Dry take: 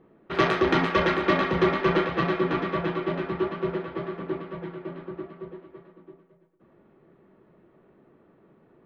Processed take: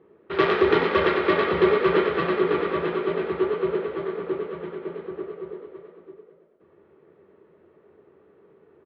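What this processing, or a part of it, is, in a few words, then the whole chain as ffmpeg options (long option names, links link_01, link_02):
frequency-shifting delay pedal into a guitar cabinet: -filter_complex "[0:a]asplit=7[link_01][link_02][link_03][link_04][link_05][link_06][link_07];[link_02]adelay=93,afreqshift=53,volume=-7.5dB[link_08];[link_03]adelay=186,afreqshift=106,volume=-13dB[link_09];[link_04]adelay=279,afreqshift=159,volume=-18.5dB[link_10];[link_05]adelay=372,afreqshift=212,volume=-24dB[link_11];[link_06]adelay=465,afreqshift=265,volume=-29.6dB[link_12];[link_07]adelay=558,afreqshift=318,volume=-35.1dB[link_13];[link_01][link_08][link_09][link_10][link_11][link_12][link_13]amix=inputs=7:normalize=0,highpass=79,equalizer=frequency=87:width_type=q:width=4:gain=9,equalizer=frequency=120:width_type=q:width=4:gain=-9,equalizer=frequency=180:width_type=q:width=4:gain=-4,equalizer=frequency=250:width_type=q:width=4:gain=-8,equalizer=frequency=420:width_type=q:width=4:gain=8,equalizer=frequency=700:width_type=q:width=4:gain=-4,lowpass=frequency=4400:width=0.5412,lowpass=frequency=4400:width=1.3066"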